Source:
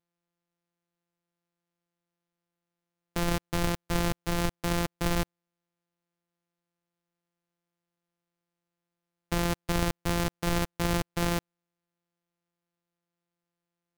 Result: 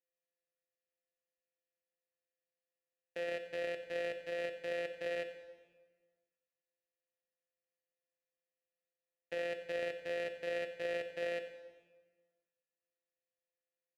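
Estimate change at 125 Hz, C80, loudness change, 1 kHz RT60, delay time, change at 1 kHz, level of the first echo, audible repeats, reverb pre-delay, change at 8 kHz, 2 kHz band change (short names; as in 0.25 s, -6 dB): -30.5 dB, 10.0 dB, -9.5 dB, 1.4 s, 90 ms, -17.0 dB, -15.0 dB, 1, 8 ms, under -20 dB, -6.5 dB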